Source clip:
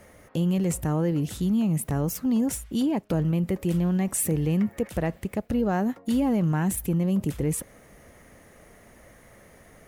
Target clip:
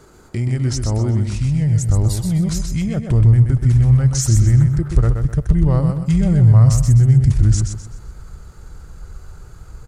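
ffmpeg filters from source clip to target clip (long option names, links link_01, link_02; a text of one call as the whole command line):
ffmpeg -i in.wav -af "asubboost=boost=10.5:cutoff=120,asetrate=31183,aresample=44100,atempo=1.41421,aecho=1:1:127|254|381|508:0.501|0.165|0.0546|0.018,volume=4.5dB" out.wav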